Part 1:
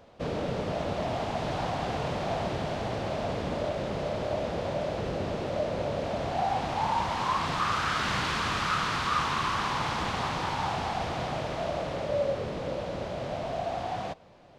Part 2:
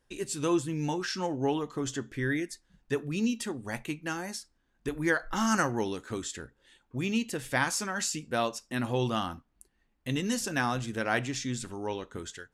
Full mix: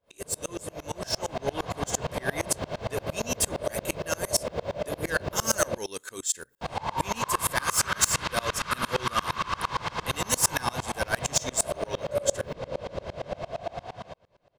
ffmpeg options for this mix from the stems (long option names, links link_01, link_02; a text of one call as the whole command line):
ffmpeg -i stem1.wav -i stem2.wav -filter_complex "[0:a]volume=-3.5dB,asplit=3[link_01][link_02][link_03];[link_01]atrim=end=5.78,asetpts=PTS-STARTPTS,afade=type=out:start_time=5.776:duration=0.004:curve=hsin[link_04];[link_02]atrim=start=5.78:end=6.61,asetpts=PTS-STARTPTS,volume=0[link_05];[link_03]atrim=start=6.61,asetpts=PTS-STARTPTS,afade=type=in:duration=0.004:curve=hsin[link_06];[link_04][link_05][link_06]concat=n=3:v=0:a=1[link_07];[1:a]aemphasis=mode=production:type=bsi,asoftclip=type=tanh:threshold=-23dB,adynamicequalizer=threshold=0.00708:dfrequency=4500:dqfactor=0.7:tfrequency=4500:tqfactor=0.7:attack=5:release=100:ratio=0.375:range=2.5:mode=boostabove:tftype=highshelf,volume=-1.5dB[link_08];[link_07][link_08]amix=inputs=2:normalize=0,aecho=1:1:1.9:0.35,dynaudnorm=framelen=260:gausssize=9:maxgain=9dB,aeval=exprs='val(0)*pow(10,-28*if(lt(mod(-8.7*n/s,1),2*abs(-8.7)/1000),1-mod(-8.7*n/s,1)/(2*abs(-8.7)/1000),(mod(-8.7*n/s,1)-2*abs(-8.7)/1000)/(1-2*abs(-8.7)/1000))/20)':channel_layout=same" out.wav